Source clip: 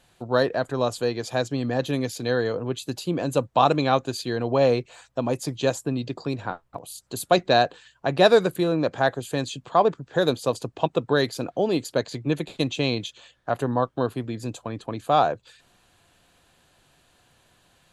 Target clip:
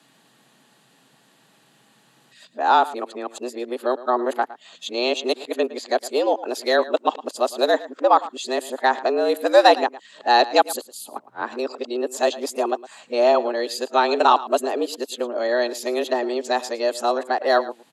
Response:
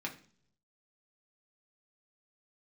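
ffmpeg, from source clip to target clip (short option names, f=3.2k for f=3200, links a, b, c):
-filter_complex "[0:a]areverse,acrossover=split=150|2100[a][b][c];[a]acompressor=threshold=-55dB:ratio=4[d];[d][b][c]amix=inputs=3:normalize=0,afreqshift=120,asplit=2[e][f];[f]adelay=110.8,volume=-17dB,highshelf=f=4k:g=-2.49[g];[e][g]amix=inputs=2:normalize=0,volume=3dB"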